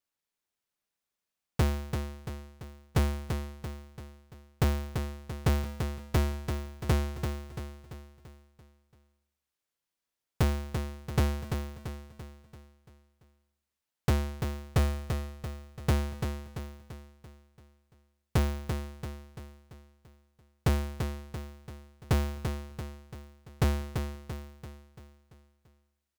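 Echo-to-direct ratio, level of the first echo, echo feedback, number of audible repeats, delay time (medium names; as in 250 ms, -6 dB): -5.5 dB, -6.5 dB, 49%, 5, 339 ms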